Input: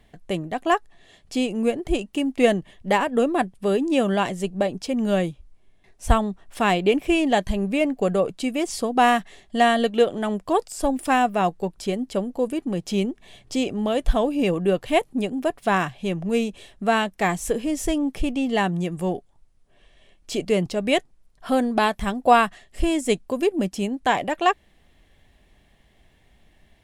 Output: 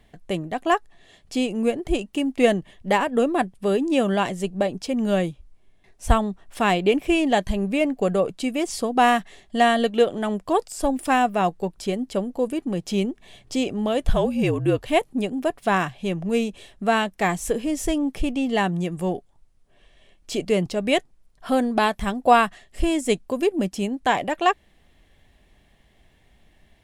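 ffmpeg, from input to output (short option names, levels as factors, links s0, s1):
-filter_complex "[0:a]asettb=1/sr,asplit=3[s0][s1][s2];[s0]atrim=end=14.094[s3];[s1]atrim=start=14.09:end=14.83,asetpts=PTS-STARTPTS,afade=t=in:d=0.004:c=qsin,afade=t=out:st=0.736:d=0.004:c=qsin,afreqshift=-51[s4];[s2]atrim=start=14.826[s5];[s3][s4]acrossfade=d=0.004:c1=hsin:c2=qsin[s6];[s6][s5]acrossfade=d=0.004:c1=qsin:c2=hsin"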